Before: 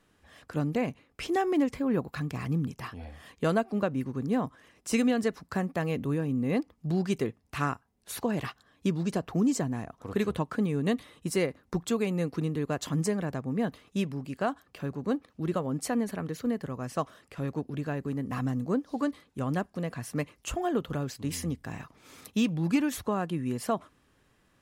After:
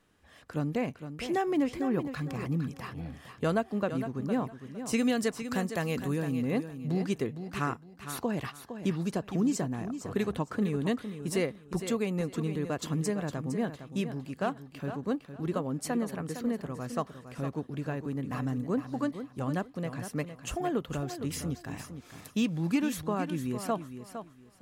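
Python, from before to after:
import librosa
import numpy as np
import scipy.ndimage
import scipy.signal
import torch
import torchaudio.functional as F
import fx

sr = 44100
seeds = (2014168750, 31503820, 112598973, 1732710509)

y = fx.high_shelf(x, sr, hz=3200.0, db=10.0, at=(5.02, 6.36))
y = fx.echo_feedback(y, sr, ms=459, feedback_pct=23, wet_db=-10.0)
y = F.gain(torch.from_numpy(y), -2.0).numpy()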